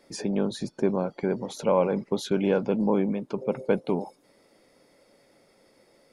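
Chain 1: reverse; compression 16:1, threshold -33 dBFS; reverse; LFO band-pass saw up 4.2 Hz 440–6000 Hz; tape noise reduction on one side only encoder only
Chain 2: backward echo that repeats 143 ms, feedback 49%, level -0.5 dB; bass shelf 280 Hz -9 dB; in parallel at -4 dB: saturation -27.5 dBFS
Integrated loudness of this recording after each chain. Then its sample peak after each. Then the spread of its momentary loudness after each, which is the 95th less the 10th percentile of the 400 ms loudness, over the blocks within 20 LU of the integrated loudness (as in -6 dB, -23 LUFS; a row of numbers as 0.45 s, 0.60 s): -50.5 LUFS, -25.0 LUFS; -29.0 dBFS, -9.0 dBFS; 17 LU, 6 LU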